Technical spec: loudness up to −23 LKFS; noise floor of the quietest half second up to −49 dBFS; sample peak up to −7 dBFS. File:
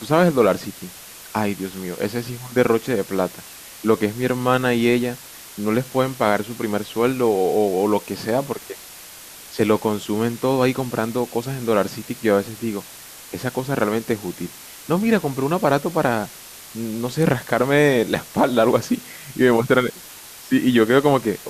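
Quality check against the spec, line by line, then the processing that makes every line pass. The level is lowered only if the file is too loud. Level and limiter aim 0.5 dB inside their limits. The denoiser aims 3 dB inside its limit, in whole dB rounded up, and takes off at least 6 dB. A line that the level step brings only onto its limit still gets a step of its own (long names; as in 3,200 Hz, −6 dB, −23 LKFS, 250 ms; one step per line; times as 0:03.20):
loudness −21.0 LKFS: out of spec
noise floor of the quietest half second −40 dBFS: out of spec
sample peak −4.0 dBFS: out of spec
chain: broadband denoise 10 dB, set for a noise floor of −40 dBFS
level −2.5 dB
brickwall limiter −7.5 dBFS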